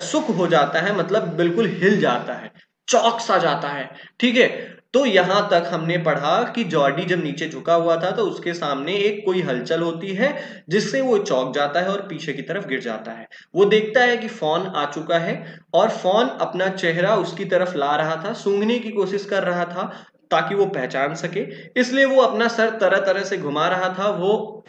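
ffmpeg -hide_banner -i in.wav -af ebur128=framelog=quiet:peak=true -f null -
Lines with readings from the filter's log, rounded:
Integrated loudness:
  I:         -20.3 LUFS
  Threshold: -30.5 LUFS
Loudness range:
  LRA:         3.1 LU
  Threshold: -40.6 LUFS
  LRA low:   -22.3 LUFS
  LRA high:  -19.2 LUFS
True peak:
  Peak:       -1.3 dBFS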